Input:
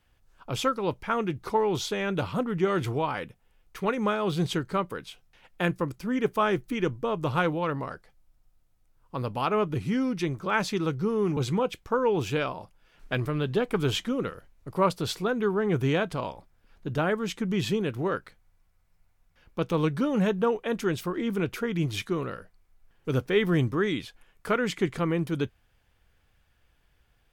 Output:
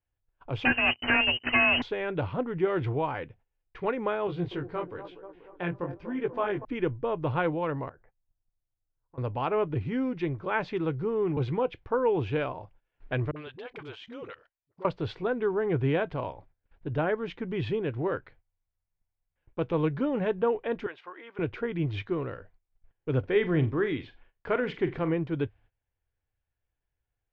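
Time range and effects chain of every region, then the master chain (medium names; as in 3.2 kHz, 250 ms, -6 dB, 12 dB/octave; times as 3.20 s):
0.65–1.82 s: sorted samples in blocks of 16 samples + waveshaping leveller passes 3 + frequency inversion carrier 3 kHz
4.27–6.65 s: feedback echo behind a band-pass 241 ms, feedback 58%, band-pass 560 Hz, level -9.5 dB + chorus 1 Hz, delay 15.5 ms, depth 7.7 ms
7.89–9.18 s: low-pass 2 kHz 24 dB/octave + compression 16:1, threshold -47 dBFS
13.31–14.85 s: tilt EQ +4 dB/octave + level held to a coarse grid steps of 19 dB + phase dispersion highs, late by 52 ms, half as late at 370 Hz
20.86–21.39 s: high-pass 990 Hz + treble shelf 3.8 kHz -11 dB
23.19–25.14 s: block-companded coder 7-bit + flutter echo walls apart 7.5 m, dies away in 0.22 s
whole clip: graphic EQ with 31 bands 100 Hz +5 dB, 200 Hz -12 dB, 1.25 kHz -6 dB; gate -55 dBFS, range -18 dB; Bessel low-pass 2.1 kHz, order 4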